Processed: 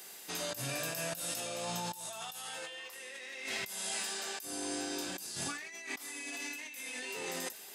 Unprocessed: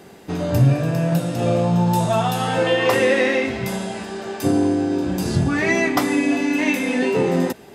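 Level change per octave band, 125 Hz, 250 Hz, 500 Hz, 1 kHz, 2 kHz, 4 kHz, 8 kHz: −30.0, −27.0, −23.5, −19.5, −16.5, −9.0, −3.0 decibels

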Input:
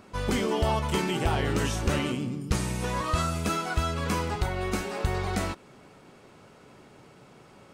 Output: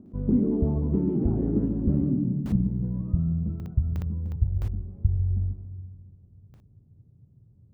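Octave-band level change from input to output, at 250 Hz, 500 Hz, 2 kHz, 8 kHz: +5.5 dB, −5.0 dB, below −25 dB, below −25 dB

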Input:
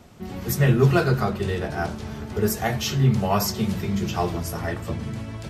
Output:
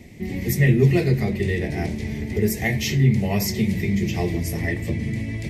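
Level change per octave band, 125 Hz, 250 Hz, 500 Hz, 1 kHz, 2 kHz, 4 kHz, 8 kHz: +2.5, +3.0, −0.5, −8.5, +3.0, −1.0, 0.0 decibels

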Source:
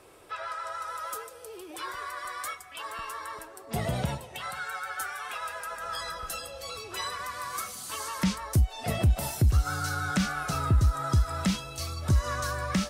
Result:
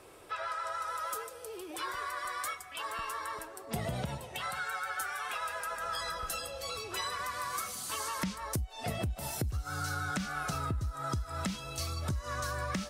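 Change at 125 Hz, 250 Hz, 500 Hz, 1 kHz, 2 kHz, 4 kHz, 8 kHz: −10.0, −8.0, −3.5, −2.5, −2.5, −3.0, −2.5 decibels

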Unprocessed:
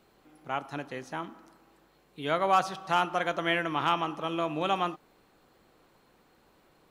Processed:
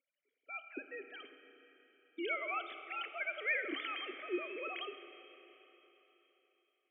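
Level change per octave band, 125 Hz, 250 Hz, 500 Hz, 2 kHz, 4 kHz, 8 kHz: below −40 dB, −11.0 dB, −11.5 dB, −4.0 dB, −9.5 dB, below −30 dB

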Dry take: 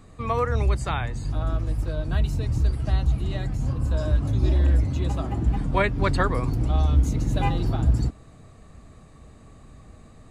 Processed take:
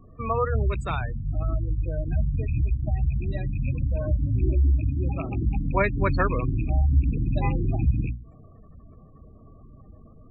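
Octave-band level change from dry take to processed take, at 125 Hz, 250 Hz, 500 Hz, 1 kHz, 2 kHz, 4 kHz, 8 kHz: −1.0 dB, −1.5 dB, −1.0 dB, −2.0 dB, −1.0 dB, below −10 dB, below −15 dB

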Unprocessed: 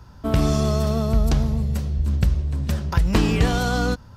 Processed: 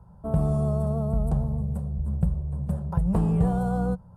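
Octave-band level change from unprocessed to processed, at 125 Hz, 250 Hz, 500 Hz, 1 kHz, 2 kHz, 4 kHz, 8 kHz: −3.5 dB, −3.0 dB, −5.0 dB, −6.0 dB, below −15 dB, below −25 dB, below −15 dB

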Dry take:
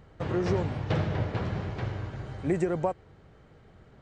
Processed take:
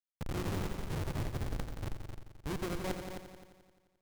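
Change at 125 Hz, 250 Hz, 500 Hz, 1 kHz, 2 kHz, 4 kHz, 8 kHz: −8.5, −9.0, −11.5, −8.5, −6.0, −2.0, +4.0 decibels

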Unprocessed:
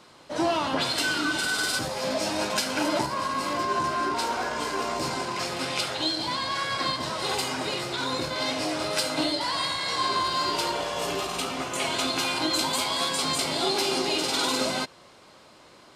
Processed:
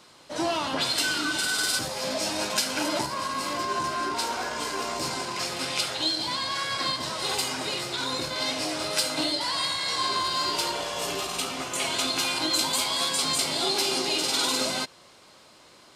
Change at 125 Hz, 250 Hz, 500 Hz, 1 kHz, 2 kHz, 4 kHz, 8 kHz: −3.0, −3.0, −3.0, −2.0, −1.0, +1.5, +3.0 decibels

